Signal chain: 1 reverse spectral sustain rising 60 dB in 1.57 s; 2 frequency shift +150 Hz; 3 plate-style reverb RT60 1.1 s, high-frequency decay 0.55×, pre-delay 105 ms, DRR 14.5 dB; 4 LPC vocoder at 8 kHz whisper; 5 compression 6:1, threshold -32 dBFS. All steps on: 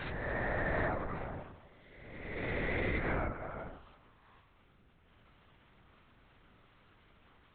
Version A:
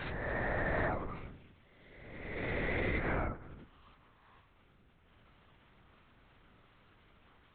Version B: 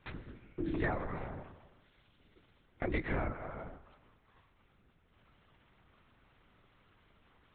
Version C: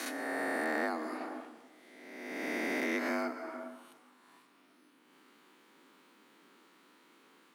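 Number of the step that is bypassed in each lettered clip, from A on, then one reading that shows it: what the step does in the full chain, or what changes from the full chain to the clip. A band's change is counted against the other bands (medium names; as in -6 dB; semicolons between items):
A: 3, momentary loudness spread change +2 LU; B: 1, 250 Hz band +4.5 dB; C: 4, 4 kHz band +3.5 dB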